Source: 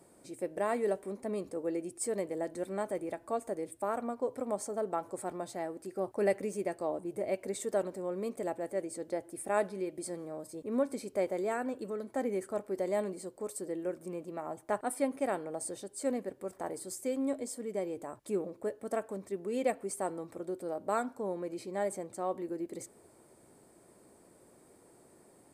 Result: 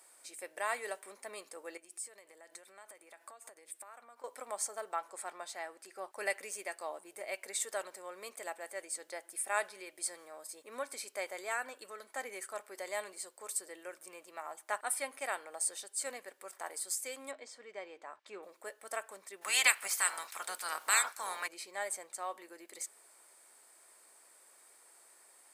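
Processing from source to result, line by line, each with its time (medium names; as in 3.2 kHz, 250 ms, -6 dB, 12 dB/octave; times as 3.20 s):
1.77–4.24 s: compression 16:1, threshold -44 dBFS
4.93–6.13 s: treble shelf 8.1 kHz -8.5 dB
17.31–18.43 s: distance through air 170 m
19.41–21.46 s: spectral peaks clipped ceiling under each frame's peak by 27 dB
whole clip: high-pass 1.4 kHz 12 dB/octave; trim +6.5 dB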